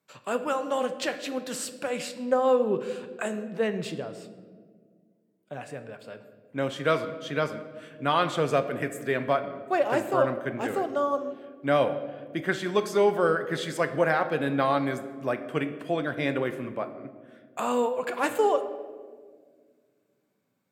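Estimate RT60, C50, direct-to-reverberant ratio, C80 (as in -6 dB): 1.8 s, 11.5 dB, 9.0 dB, 13.0 dB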